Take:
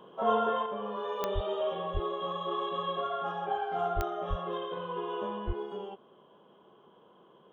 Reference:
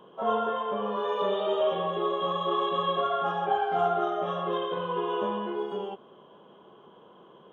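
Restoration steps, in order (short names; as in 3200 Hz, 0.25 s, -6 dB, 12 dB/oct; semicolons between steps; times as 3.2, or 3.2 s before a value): de-click; de-plosive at 1.34/1.93/3.95/4.29/5.46; gain correction +6 dB, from 0.66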